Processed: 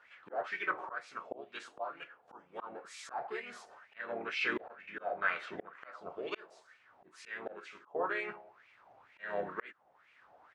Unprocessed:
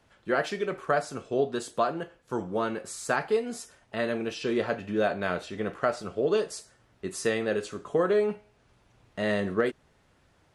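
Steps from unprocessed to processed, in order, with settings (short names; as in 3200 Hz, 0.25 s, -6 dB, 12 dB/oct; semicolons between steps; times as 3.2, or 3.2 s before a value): harmoniser -12 st -16 dB, -3 st -3 dB; wah 2.1 Hz 700–2400 Hz, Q 4.7; auto swell 0.623 s; gain +12.5 dB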